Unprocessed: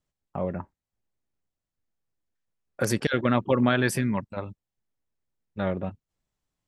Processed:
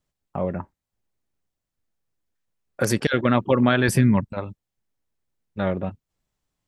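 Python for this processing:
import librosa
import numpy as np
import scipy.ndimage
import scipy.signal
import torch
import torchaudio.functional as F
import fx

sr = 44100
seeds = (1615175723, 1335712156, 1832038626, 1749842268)

y = fx.low_shelf(x, sr, hz=250.0, db=9.0, at=(3.88, 4.33))
y = y * 10.0 ** (3.5 / 20.0)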